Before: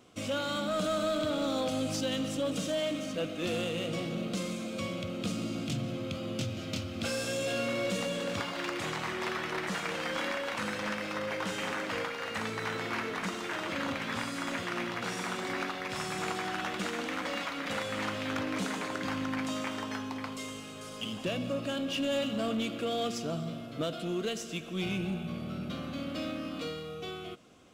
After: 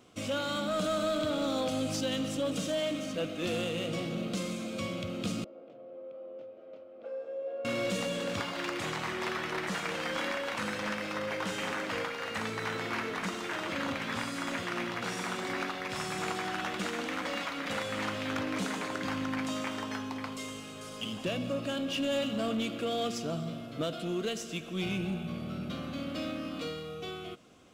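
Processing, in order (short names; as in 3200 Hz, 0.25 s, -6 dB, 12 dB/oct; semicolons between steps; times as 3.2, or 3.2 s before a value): 5.44–7.65 ladder band-pass 560 Hz, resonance 65%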